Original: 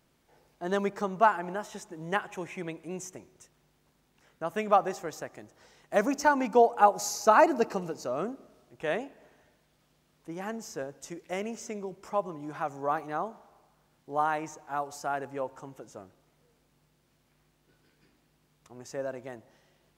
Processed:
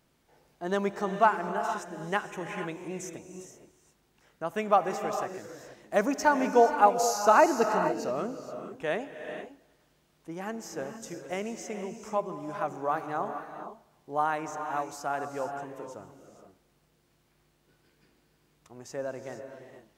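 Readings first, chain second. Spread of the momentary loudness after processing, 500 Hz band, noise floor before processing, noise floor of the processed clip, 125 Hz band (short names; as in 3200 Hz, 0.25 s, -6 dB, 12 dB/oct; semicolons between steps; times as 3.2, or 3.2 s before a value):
20 LU, +1.0 dB, -70 dBFS, -69 dBFS, +1.0 dB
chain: non-linear reverb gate 0.5 s rising, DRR 7 dB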